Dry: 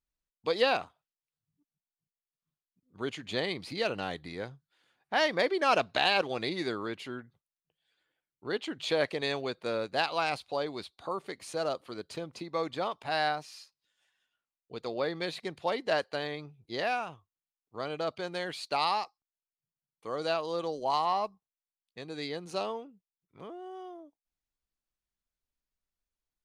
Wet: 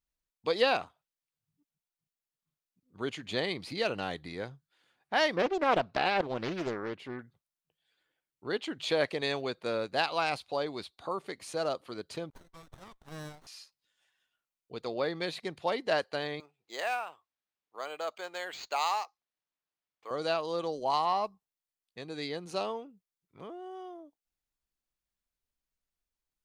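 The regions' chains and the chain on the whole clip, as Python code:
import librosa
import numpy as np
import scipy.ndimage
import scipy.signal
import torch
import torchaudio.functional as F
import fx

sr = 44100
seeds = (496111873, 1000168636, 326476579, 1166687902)

y = fx.chain(x, sr, fx.high_shelf(hz=3000.0, db=-11.5),
    fx.doppler_dist(depth_ms=0.47), at=(5.36, 7.19))
y = fx.chain(y, sr, fx.highpass(hz=580.0, slope=24),
    fx.differentiator(),
    fx.running_max(window=17), at=(12.3, 13.47))
y = fx.chain(y, sr, fx.highpass(hz=610.0, slope=12),
    fx.resample_linear(factor=4), at=(16.4, 20.11))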